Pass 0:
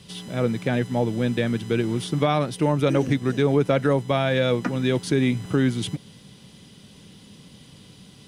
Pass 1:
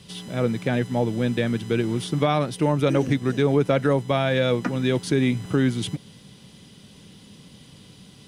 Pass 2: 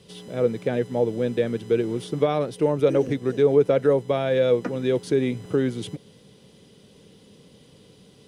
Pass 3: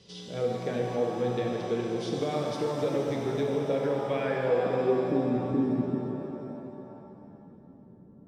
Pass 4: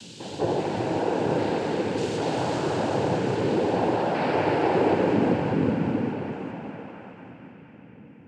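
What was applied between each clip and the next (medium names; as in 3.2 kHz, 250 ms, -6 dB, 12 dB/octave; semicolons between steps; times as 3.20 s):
no audible change
peaking EQ 460 Hz +12 dB 0.84 oct; trim -6.5 dB
compression 2.5:1, threshold -24 dBFS, peak gain reduction 8 dB; low-pass sweep 5.5 kHz -> 260 Hz, 3.86–5.03 s; pitch-shifted reverb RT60 3 s, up +7 st, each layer -8 dB, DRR -1 dB; trim -6 dB
spectrogram pixelated in time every 200 ms; noise-vocoded speech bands 8; band-passed feedback delay 235 ms, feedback 80%, band-pass 2.3 kHz, level -3.5 dB; trim +6 dB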